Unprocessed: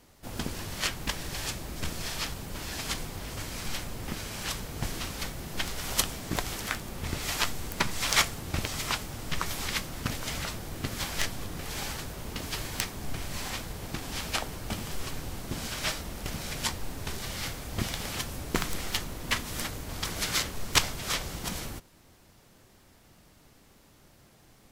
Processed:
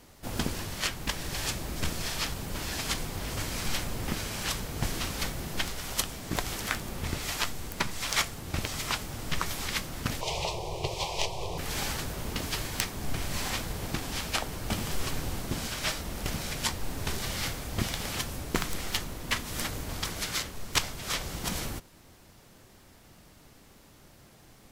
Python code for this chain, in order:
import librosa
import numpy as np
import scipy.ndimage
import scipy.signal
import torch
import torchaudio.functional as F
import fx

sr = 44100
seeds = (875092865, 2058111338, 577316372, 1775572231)

y = fx.curve_eq(x, sr, hz=(170.0, 250.0, 360.0, 1000.0, 1500.0, 2400.0, 5500.0, 13000.0), db=(0, -28, 7, 10, -27, 4, 2, -10), at=(10.21, 11.58))
y = fx.rider(y, sr, range_db=4, speed_s=0.5)